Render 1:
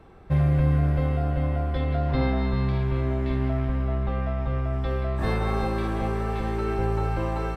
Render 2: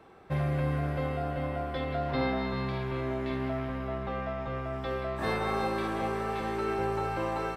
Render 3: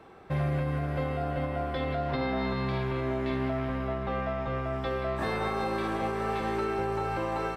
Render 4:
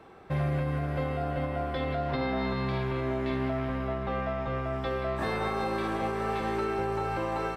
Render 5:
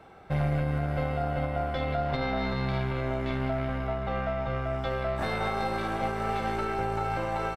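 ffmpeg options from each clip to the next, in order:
-af "highpass=f=360:p=1"
-af "highshelf=f=9.6k:g=-3.5,alimiter=limit=-24dB:level=0:latency=1:release=181,volume=3dB"
-af anull
-af "aeval=exprs='0.0944*(cos(1*acos(clip(val(0)/0.0944,-1,1)))-cos(1*PI/2))+0.0188*(cos(2*acos(clip(val(0)/0.0944,-1,1)))-cos(2*PI/2))':c=same,aecho=1:1:1.4:0.35"

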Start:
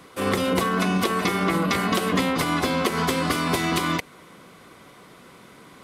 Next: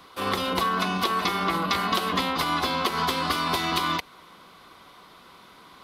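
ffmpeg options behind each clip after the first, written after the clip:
-af "equalizer=f=125:t=o:w=1:g=-9,equalizer=f=250:t=o:w=1:g=-5,equalizer=f=500:t=o:w=1:g=-6,equalizer=f=1k:t=o:w=1:g=4,equalizer=f=2k:t=o:w=1:g=-5,equalizer=f=4k:t=o:w=1:g=6,equalizer=f=8k:t=o:w=1:g=-9"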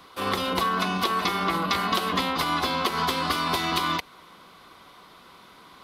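-af anull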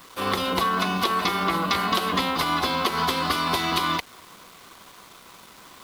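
-af "acrusher=bits=7:mix=0:aa=0.000001,volume=1.5dB"

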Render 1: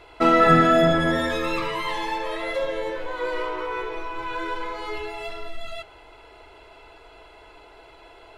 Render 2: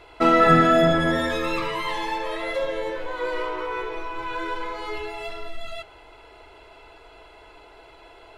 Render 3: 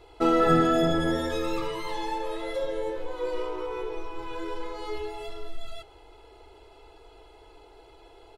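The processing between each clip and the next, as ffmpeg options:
-af anull
-af "equalizer=f=1.9k:w=0.83:g=-10,aecho=1:1:2.4:0.43,volume=-2.5dB"

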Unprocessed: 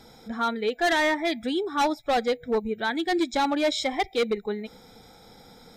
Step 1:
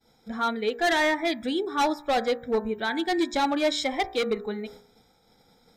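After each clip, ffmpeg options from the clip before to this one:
-af "agate=range=-33dB:threshold=-42dB:ratio=3:detection=peak,bandreject=f=59.09:t=h:w=4,bandreject=f=118.18:t=h:w=4,bandreject=f=177.27:t=h:w=4,bandreject=f=236.36:t=h:w=4,bandreject=f=295.45:t=h:w=4,bandreject=f=354.54:t=h:w=4,bandreject=f=413.63:t=h:w=4,bandreject=f=472.72:t=h:w=4,bandreject=f=531.81:t=h:w=4,bandreject=f=590.9:t=h:w=4,bandreject=f=649.99:t=h:w=4,bandreject=f=709.08:t=h:w=4,bandreject=f=768.17:t=h:w=4,bandreject=f=827.26:t=h:w=4,bandreject=f=886.35:t=h:w=4,bandreject=f=945.44:t=h:w=4,bandreject=f=1.00453k:t=h:w=4,bandreject=f=1.06362k:t=h:w=4,bandreject=f=1.12271k:t=h:w=4,bandreject=f=1.1818k:t=h:w=4,bandreject=f=1.24089k:t=h:w=4,bandreject=f=1.29998k:t=h:w=4,bandreject=f=1.35907k:t=h:w=4,bandreject=f=1.41816k:t=h:w=4,bandreject=f=1.47725k:t=h:w=4,bandreject=f=1.53634k:t=h:w=4,bandreject=f=1.59543k:t=h:w=4,bandreject=f=1.65452k:t=h:w=4,bandreject=f=1.71361k:t=h:w=4,bandreject=f=1.7727k:t=h:w=4,bandreject=f=1.83179k:t=h:w=4,bandreject=f=1.89088k:t=h:w=4"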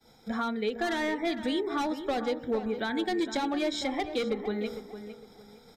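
-filter_complex "[0:a]acrossover=split=110|320[a][b][c];[a]acompressor=threshold=-55dB:ratio=4[d];[b]acompressor=threshold=-38dB:ratio=4[e];[c]acompressor=threshold=-36dB:ratio=4[f];[d][e][f]amix=inputs=3:normalize=0,asplit=2[g][h];[h]adelay=457,lowpass=f=2.7k:p=1,volume=-10.5dB,asplit=2[i][j];[j]adelay=457,lowpass=f=2.7k:p=1,volume=0.29,asplit=2[k][l];[l]adelay=457,lowpass=f=2.7k:p=1,volume=0.29[m];[i][k][m]amix=inputs=3:normalize=0[n];[g][n]amix=inputs=2:normalize=0,volume=4dB"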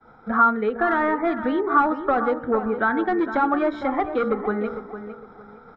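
-af "lowpass=f=1.3k:t=q:w=5.4,volume=6dB"

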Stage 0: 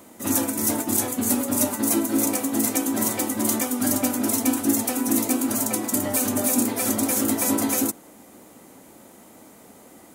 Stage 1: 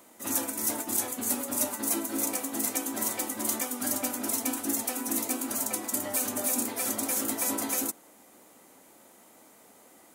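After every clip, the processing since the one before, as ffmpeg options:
-af "lowshelf=f=300:g=-12,volume=-5dB"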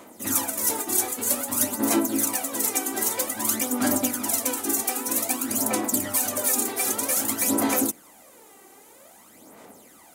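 -af "aphaser=in_gain=1:out_gain=1:delay=2.6:decay=0.6:speed=0.52:type=sinusoidal,volume=3.5dB"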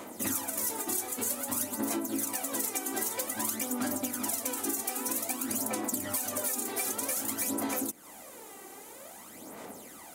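-af "acompressor=threshold=-32dB:ratio=10,volume=3dB"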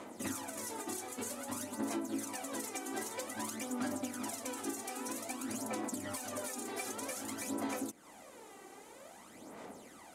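-af "lowpass=9.5k,highshelf=f=4.8k:g=-5,volume=-4dB"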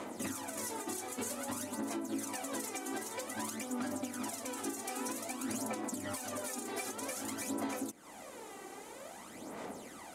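-af "alimiter=level_in=9dB:limit=-24dB:level=0:latency=1:release=382,volume=-9dB,volume=5dB"

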